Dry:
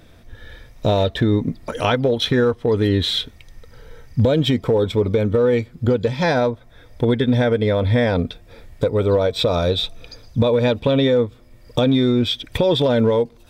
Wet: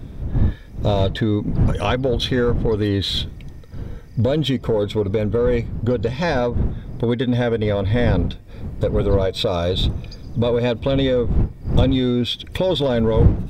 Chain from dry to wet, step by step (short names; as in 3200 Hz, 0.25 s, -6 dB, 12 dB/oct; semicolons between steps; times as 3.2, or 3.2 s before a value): wind noise 120 Hz -21 dBFS; in parallel at -4 dB: soft clip -13 dBFS, distortion -11 dB; on the sum: gain -5.5 dB